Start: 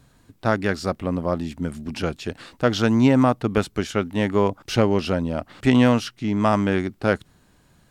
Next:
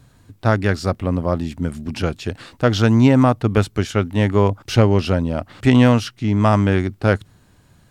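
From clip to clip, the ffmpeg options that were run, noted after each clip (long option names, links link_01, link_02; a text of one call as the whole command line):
ffmpeg -i in.wav -af "equalizer=frequency=100:width=2.3:gain=9,volume=2.5dB" out.wav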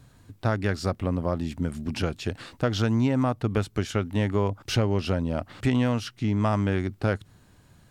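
ffmpeg -i in.wav -af "acompressor=threshold=-20dB:ratio=2.5,volume=-3dB" out.wav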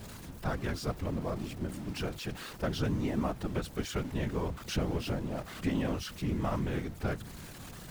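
ffmpeg -i in.wav -af "aeval=exprs='val(0)+0.5*0.0282*sgn(val(0))':channel_layout=same,afftfilt=real='hypot(re,im)*cos(2*PI*random(0))':imag='hypot(re,im)*sin(2*PI*random(1))':win_size=512:overlap=0.75,volume=-3.5dB" out.wav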